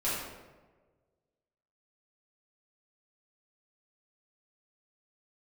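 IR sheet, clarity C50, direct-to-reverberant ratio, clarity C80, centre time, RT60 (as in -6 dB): -0.5 dB, -10.5 dB, 2.5 dB, 80 ms, 1.4 s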